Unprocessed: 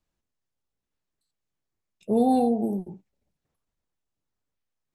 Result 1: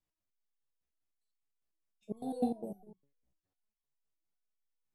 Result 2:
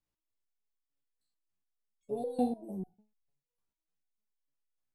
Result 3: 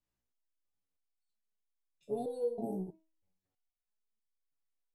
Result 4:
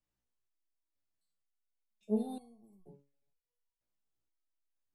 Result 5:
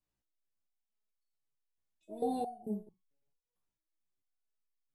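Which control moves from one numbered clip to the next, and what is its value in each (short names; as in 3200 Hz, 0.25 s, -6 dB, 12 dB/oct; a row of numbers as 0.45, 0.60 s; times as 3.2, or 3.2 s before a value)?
stepped resonator, rate: 9.9, 6.7, 3.1, 2.1, 4.5 Hz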